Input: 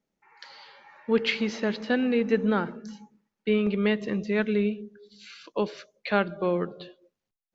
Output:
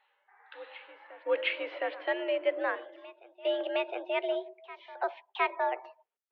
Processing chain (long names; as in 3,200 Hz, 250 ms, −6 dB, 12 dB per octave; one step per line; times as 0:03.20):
gliding playback speed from 78% → 161%
single-sideband voice off tune +80 Hz 370–3,100 Hz
backwards echo 712 ms −18.5 dB
level −3 dB